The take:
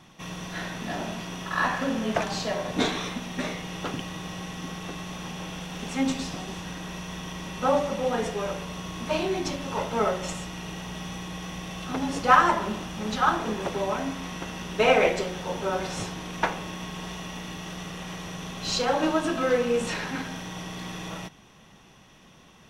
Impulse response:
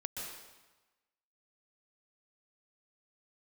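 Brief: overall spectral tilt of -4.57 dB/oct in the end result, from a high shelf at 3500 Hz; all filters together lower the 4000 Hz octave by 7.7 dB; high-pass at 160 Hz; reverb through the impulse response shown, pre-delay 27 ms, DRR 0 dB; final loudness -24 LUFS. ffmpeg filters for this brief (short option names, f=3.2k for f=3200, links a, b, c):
-filter_complex "[0:a]highpass=160,highshelf=f=3.5k:g=-4.5,equalizer=f=4k:t=o:g=-7.5,asplit=2[a][b];[1:a]atrim=start_sample=2205,adelay=27[c];[b][c]afir=irnorm=-1:irlink=0,volume=-0.5dB[d];[a][d]amix=inputs=2:normalize=0,volume=2.5dB"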